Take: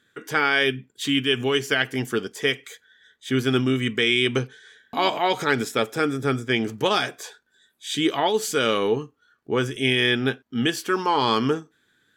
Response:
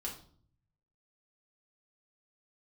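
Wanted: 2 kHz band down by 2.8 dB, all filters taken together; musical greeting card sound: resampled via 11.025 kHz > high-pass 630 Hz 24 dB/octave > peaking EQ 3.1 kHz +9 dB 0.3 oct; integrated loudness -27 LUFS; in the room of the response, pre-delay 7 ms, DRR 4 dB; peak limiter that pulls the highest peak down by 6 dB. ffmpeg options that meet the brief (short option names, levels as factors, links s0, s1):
-filter_complex "[0:a]equalizer=f=2000:t=o:g=-4.5,alimiter=limit=0.2:level=0:latency=1,asplit=2[s0][s1];[1:a]atrim=start_sample=2205,adelay=7[s2];[s1][s2]afir=irnorm=-1:irlink=0,volume=0.631[s3];[s0][s3]amix=inputs=2:normalize=0,aresample=11025,aresample=44100,highpass=f=630:w=0.5412,highpass=f=630:w=1.3066,equalizer=f=3100:t=o:w=0.3:g=9,volume=0.75"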